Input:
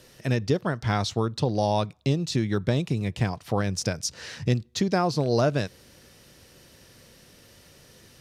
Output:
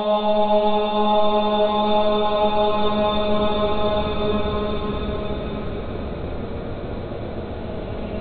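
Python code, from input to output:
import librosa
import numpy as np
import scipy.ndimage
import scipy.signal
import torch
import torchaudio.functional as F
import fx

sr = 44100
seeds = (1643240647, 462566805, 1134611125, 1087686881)

p1 = fx.echo_diffused(x, sr, ms=458, feedback_pct=50, wet_db=-14.0)
p2 = fx.lpc_monotone(p1, sr, seeds[0], pitch_hz=210.0, order=8)
p3 = fx.paulstretch(p2, sr, seeds[1], factor=32.0, window_s=0.25, from_s=1.73)
p4 = fx.rider(p3, sr, range_db=4, speed_s=0.5)
y = p3 + F.gain(torch.from_numpy(p4), 1.0).numpy()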